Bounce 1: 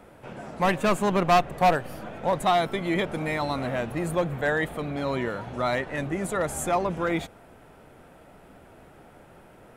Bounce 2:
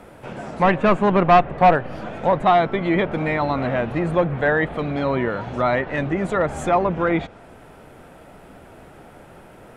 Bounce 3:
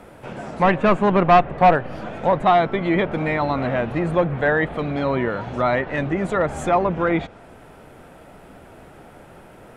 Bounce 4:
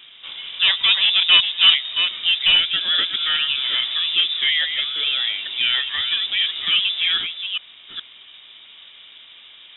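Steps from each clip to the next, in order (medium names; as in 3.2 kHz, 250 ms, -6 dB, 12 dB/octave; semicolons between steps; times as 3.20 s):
low-pass that closes with the level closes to 2.4 kHz, closed at -23.5 dBFS; trim +6.5 dB
no audible change
chunks repeated in reverse 421 ms, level -7 dB; frequency inversion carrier 3.7 kHz; trim -1 dB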